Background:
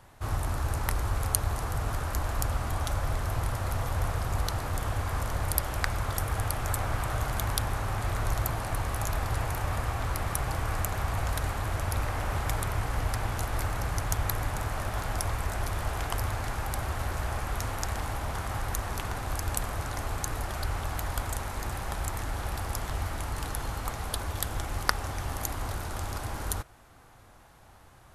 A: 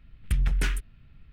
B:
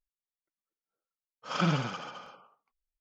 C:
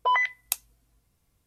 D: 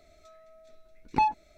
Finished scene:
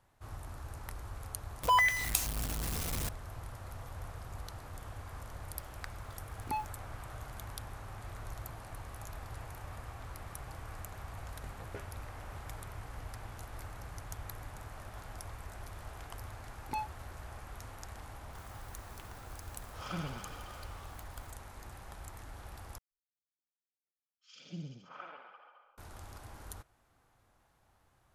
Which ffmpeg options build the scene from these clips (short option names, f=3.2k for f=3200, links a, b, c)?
-filter_complex "[4:a]asplit=2[a][b];[2:a]asplit=2[c][d];[0:a]volume=-15dB[e];[3:a]aeval=exprs='val(0)+0.5*0.0562*sgn(val(0))':c=same[f];[a]acrusher=bits=7:mix=0:aa=0.000001[g];[1:a]bandpass=f=540:t=q:w=3.2:csg=0[h];[b]crystalizer=i=2:c=0[i];[c]aeval=exprs='val(0)+0.5*0.0141*sgn(val(0))':c=same[j];[d]acrossover=split=460|2600[k][l][m];[k]adelay=130[n];[l]adelay=620[o];[n][o][m]amix=inputs=3:normalize=0[p];[e]asplit=2[q][r];[q]atrim=end=22.784[s];[p]atrim=end=3,asetpts=PTS-STARTPTS,volume=-14.5dB[t];[r]atrim=start=25.776[u];[f]atrim=end=1.46,asetpts=PTS-STARTPTS,volume=-5dB,afade=t=in:d=0.004:c=hsin,afade=t=out:st=1.456:d=0.004:c=hsin,adelay=1630[v];[g]atrim=end=1.57,asetpts=PTS-STARTPTS,volume=-12.5dB,afade=t=in:d=0.004:c=hsin,afade=t=out:st=1.566:d=0.004:c=hsin,adelay=235053S[w];[h]atrim=end=1.32,asetpts=PTS-STARTPTS,volume=-0.5dB,afade=t=in:d=0.004:c=hsin,afade=t=out:st=1.316:d=0.004:c=hsin,adelay=11130[x];[i]atrim=end=1.57,asetpts=PTS-STARTPTS,volume=-14dB,afade=t=in:d=0.004:c=hsin,afade=t=out:st=1.566:d=0.004:c=hsin,adelay=15550[y];[j]atrim=end=3,asetpts=PTS-STARTPTS,volume=-13dB,afade=t=in:d=0.004:c=hsin,afade=t=out:st=2.996:d=0.004:c=hsin,adelay=18310[z];[s][t]acrossfade=d=0.004:c1=hsin:c2=hsin[aa];[aa][u]acrossfade=d=0.004:c1=hsin:c2=hsin[ab];[ab][v][w][x][y][z]amix=inputs=6:normalize=0"